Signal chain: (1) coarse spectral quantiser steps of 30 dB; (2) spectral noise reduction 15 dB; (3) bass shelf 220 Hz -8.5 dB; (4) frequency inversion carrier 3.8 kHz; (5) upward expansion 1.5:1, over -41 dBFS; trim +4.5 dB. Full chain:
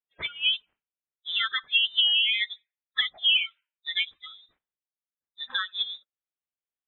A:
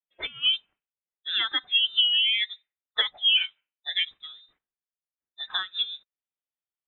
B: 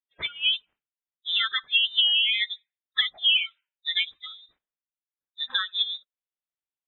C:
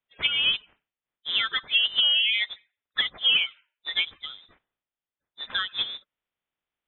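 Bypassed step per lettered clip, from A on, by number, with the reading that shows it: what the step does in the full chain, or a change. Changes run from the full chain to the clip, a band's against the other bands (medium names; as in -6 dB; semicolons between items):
1, momentary loudness spread change -1 LU; 3, momentary loudness spread change -5 LU; 2, momentary loudness spread change -1 LU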